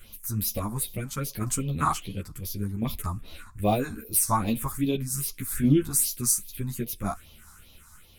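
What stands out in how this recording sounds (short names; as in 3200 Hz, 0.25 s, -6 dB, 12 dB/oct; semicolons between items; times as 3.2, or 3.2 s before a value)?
phasing stages 4, 2.5 Hz, lowest notch 460–1500 Hz; tremolo saw down 0.71 Hz, depth 40%; a shimmering, thickened sound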